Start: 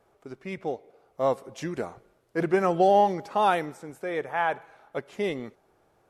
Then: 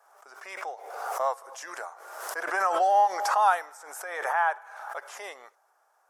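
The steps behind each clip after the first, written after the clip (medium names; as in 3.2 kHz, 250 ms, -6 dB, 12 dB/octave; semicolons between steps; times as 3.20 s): high-pass 770 Hz 24 dB/octave; high-order bell 3 kHz -10 dB 1.3 oct; swell ahead of each attack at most 46 dB/s; trim +3 dB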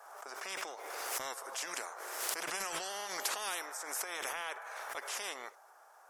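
spectrum-flattening compressor 4:1; trim -7.5 dB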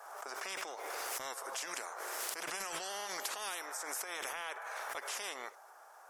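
compression 3:1, threshold -41 dBFS, peak gain reduction 8.5 dB; trim +3 dB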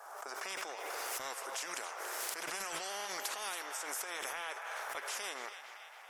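band-passed feedback delay 280 ms, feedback 71%, band-pass 2.4 kHz, level -8 dB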